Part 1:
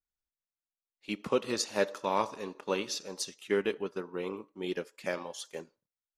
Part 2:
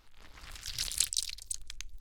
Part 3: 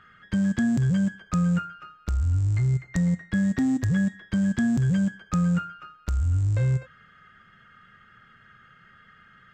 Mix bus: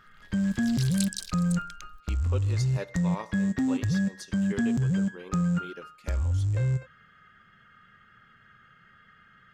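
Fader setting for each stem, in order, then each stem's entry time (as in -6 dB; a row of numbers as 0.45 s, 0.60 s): -8.0 dB, -4.0 dB, -3.0 dB; 1.00 s, 0.00 s, 0.00 s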